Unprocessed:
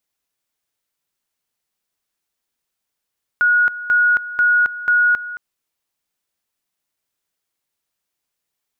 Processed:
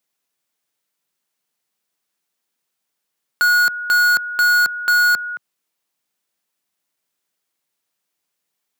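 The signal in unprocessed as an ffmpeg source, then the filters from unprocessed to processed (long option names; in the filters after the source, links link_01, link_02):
-f lavfi -i "aevalsrc='pow(10,(-11-15*gte(mod(t,0.49),0.27))/20)*sin(2*PI*1450*t)':duration=1.96:sample_rate=44100"
-filter_complex "[0:a]highpass=frequency=130:width=0.5412,highpass=frequency=130:width=1.3066,asplit=2[link_01][link_02];[link_02]aeval=exprs='(mod(3.98*val(0)+1,2)-1)/3.98':channel_layout=same,volume=-10.5dB[link_03];[link_01][link_03]amix=inputs=2:normalize=0"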